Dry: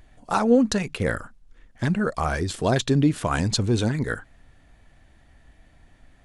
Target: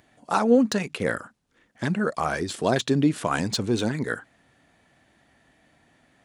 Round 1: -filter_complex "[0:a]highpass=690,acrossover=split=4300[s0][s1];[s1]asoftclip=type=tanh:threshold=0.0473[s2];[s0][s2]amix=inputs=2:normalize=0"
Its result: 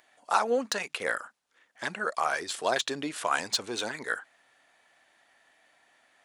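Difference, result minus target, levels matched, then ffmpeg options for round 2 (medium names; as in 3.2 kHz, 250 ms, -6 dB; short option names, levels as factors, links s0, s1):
125 Hz band -17.0 dB
-filter_complex "[0:a]highpass=170,acrossover=split=4300[s0][s1];[s1]asoftclip=type=tanh:threshold=0.0473[s2];[s0][s2]amix=inputs=2:normalize=0"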